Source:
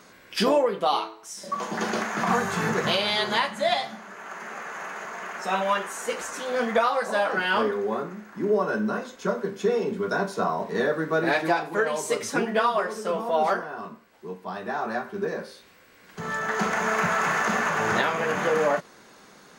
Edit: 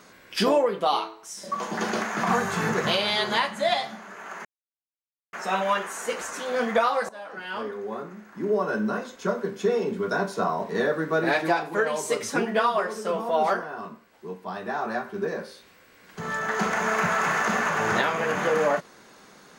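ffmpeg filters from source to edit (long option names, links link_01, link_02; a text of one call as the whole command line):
ffmpeg -i in.wav -filter_complex "[0:a]asplit=4[link_01][link_02][link_03][link_04];[link_01]atrim=end=4.45,asetpts=PTS-STARTPTS,afade=type=out:start_time=4.446:duration=0.004:curve=hsin[link_05];[link_02]atrim=start=4.45:end=5.33,asetpts=PTS-STARTPTS,volume=0[link_06];[link_03]atrim=start=5.33:end=7.09,asetpts=PTS-STARTPTS,afade=type=in:duration=0.004:curve=hsin,afade=type=out:start_time=1.756:duration=0.004:curve=hsin:silence=0.1[link_07];[link_04]atrim=start=7.09,asetpts=PTS-STARTPTS,afade=type=in:duration=1.75:silence=0.1[link_08];[link_05][link_06][link_07][link_08]concat=n=4:v=0:a=1" out.wav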